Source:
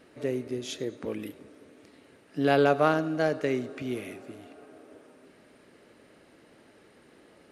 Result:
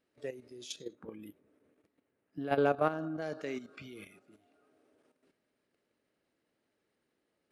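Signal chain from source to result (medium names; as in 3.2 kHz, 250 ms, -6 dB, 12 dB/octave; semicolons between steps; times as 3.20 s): spectral noise reduction 11 dB; peaking EQ 5.2 kHz +4 dB 1.8 oct, from 0.93 s -9 dB, from 3.22 s +3 dB; level held to a coarse grid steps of 11 dB; trim -4 dB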